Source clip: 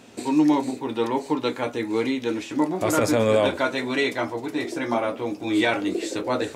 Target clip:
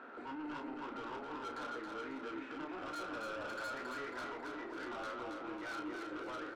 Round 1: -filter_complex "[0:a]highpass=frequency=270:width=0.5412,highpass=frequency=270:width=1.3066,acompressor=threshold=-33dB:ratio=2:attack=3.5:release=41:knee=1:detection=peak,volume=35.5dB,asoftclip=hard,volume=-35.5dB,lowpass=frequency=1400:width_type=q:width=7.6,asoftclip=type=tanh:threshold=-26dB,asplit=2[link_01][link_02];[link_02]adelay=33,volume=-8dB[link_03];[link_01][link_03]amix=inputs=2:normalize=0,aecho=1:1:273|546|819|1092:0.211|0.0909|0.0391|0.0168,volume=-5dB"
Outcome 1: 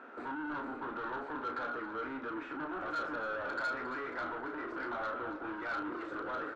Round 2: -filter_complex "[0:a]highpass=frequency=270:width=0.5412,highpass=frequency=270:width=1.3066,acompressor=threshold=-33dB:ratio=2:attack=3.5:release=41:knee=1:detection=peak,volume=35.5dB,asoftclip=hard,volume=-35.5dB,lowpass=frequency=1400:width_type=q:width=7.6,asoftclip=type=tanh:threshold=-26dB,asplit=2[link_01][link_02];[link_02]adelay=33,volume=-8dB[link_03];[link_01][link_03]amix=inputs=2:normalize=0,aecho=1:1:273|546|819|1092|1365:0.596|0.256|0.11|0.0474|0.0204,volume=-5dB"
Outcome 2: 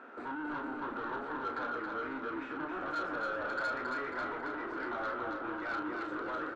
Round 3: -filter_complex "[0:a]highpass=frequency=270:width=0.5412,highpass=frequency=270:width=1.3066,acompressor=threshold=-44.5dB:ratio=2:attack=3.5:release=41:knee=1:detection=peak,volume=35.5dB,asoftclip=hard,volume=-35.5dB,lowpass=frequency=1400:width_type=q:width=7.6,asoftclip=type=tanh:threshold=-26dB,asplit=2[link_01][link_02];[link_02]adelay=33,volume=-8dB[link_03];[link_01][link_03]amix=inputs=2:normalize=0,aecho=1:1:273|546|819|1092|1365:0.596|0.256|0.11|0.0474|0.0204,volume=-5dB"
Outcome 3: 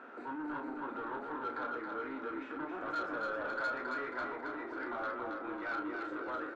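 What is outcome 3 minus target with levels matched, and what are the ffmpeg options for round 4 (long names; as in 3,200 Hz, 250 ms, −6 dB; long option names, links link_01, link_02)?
soft clipping: distortion −10 dB
-filter_complex "[0:a]highpass=frequency=270:width=0.5412,highpass=frequency=270:width=1.3066,acompressor=threshold=-44.5dB:ratio=2:attack=3.5:release=41:knee=1:detection=peak,volume=35.5dB,asoftclip=hard,volume=-35.5dB,lowpass=frequency=1400:width_type=q:width=7.6,asoftclip=type=tanh:threshold=-37dB,asplit=2[link_01][link_02];[link_02]adelay=33,volume=-8dB[link_03];[link_01][link_03]amix=inputs=2:normalize=0,aecho=1:1:273|546|819|1092|1365:0.596|0.256|0.11|0.0474|0.0204,volume=-5dB"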